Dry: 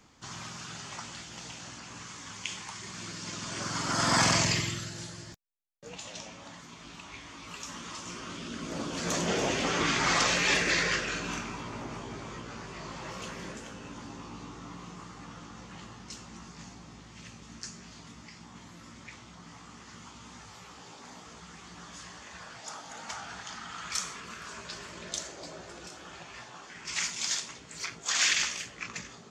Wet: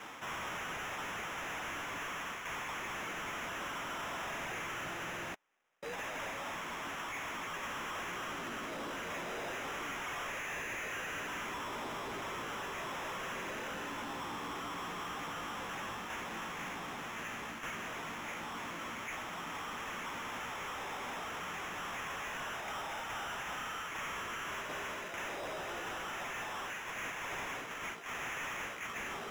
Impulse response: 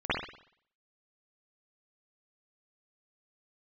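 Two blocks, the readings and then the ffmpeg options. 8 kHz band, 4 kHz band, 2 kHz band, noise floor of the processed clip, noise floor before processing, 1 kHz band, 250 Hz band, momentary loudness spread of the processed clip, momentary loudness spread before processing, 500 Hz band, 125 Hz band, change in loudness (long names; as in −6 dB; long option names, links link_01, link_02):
−13.5 dB, −10.0 dB, −4.0 dB, −43 dBFS, −51 dBFS, −1.5 dB, −8.5 dB, 2 LU, 23 LU, −4.5 dB, −12.0 dB, −8.0 dB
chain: -filter_complex "[0:a]bass=frequency=250:gain=-5,treble=frequency=4000:gain=-1,areverse,acompressor=threshold=-44dB:ratio=10,areverse,acrusher=samples=10:mix=1:aa=0.000001,asplit=2[link_01][link_02];[link_02]highpass=frequency=720:poles=1,volume=25dB,asoftclip=type=tanh:threshold=-33.5dB[link_03];[link_01][link_03]amix=inputs=2:normalize=0,lowpass=frequency=4300:poles=1,volume=-6dB"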